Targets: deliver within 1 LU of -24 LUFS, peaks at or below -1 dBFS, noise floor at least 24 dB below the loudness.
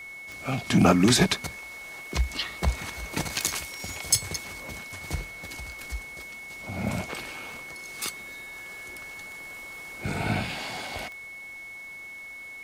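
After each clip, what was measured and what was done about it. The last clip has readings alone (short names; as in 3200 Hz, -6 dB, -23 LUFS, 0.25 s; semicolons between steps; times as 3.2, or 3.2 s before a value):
clicks 7; steady tone 2200 Hz; tone level -39 dBFS; loudness -29.5 LUFS; peak -6.0 dBFS; loudness target -24.0 LUFS
-> de-click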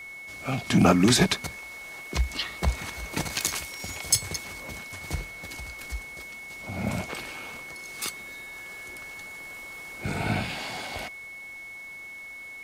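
clicks 0; steady tone 2200 Hz; tone level -39 dBFS
-> notch 2200 Hz, Q 30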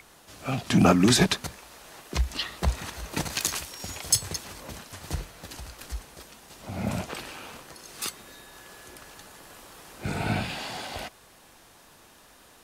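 steady tone none; loudness -27.5 LUFS; peak -6.0 dBFS; loudness target -24.0 LUFS
-> gain +3.5 dB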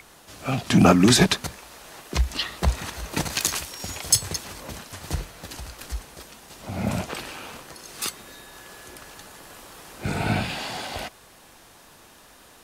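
loudness -24.0 LUFS; peak -2.5 dBFS; noise floor -51 dBFS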